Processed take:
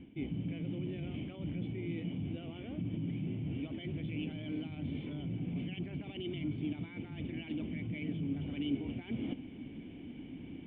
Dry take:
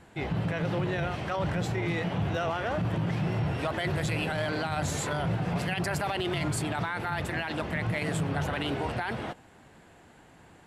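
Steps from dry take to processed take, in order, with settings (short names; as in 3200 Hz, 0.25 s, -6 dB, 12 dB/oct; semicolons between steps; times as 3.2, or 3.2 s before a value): reverse; compressor 10:1, threshold -43 dBFS, peak gain reduction 18 dB; reverse; vocal tract filter i; gain +18 dB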